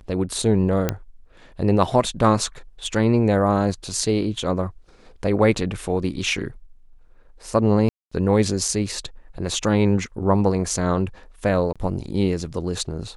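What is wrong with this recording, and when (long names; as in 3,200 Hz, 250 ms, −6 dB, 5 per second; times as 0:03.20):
0:00.89: click −7 dBFS
0:07.89–0:08.12: drop-out 225 ms
0:11.73–0:11.76: drop-out 26 ms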